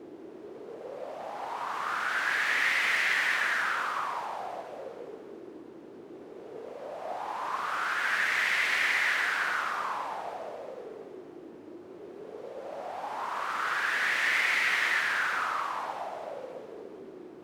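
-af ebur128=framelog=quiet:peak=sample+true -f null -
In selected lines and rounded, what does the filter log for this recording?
Integrated loudness:
  I:         -28.4 LUFS
  Threshold: -40.3 LUFS
Loudness range:
  LRA:        12.1 LU
  Threshold: -49.8 LUFS
  LRA low:   -39.7 LUFS
  LRA high:  -27.6 LUFS
Sample peak:
  Peak:      -14.1 dBFS
True peak:
  Peak:      -14.1 dBFS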